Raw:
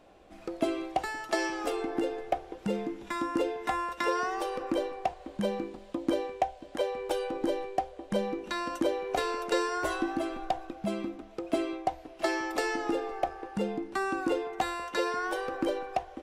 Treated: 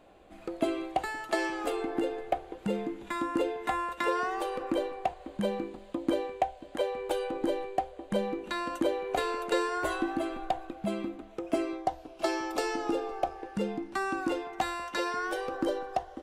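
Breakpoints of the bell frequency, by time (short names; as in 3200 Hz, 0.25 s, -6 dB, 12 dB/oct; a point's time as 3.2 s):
bell -10.5 dB 0.25 oct
11.27 s 5500 Hz
12.07 s 1900 Hz
13.28 s 1900 Hz
13.78 s 460 Hz
15.12 s 460 Hz
15.59 s 2400 Hz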